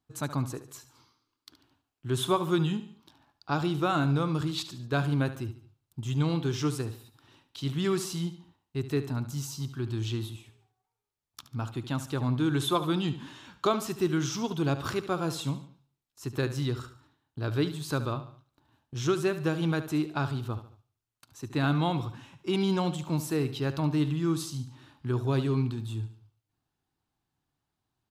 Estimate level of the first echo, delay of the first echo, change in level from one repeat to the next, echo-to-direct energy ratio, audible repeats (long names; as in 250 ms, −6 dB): −13.0 dB, 72 ms, −7.5 dB, −12.0 dB, 3